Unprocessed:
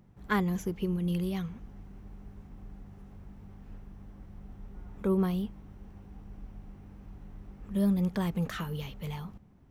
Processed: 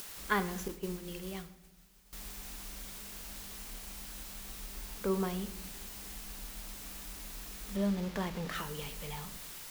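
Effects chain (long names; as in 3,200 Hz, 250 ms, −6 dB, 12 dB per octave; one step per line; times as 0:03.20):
bit-depth reduction 8 bits, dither triangular
parametric band 120 Hz −12.5 dB 1.9 octaves
upward compression, threshold −42 dBFS
0:00.68–0:02.13: downward expander −33 dBFS
rectangular room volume 260 cubic metres, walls mixed, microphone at 0.34 metres
0:07.76–0:08.55: windowed peak hold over 5 samples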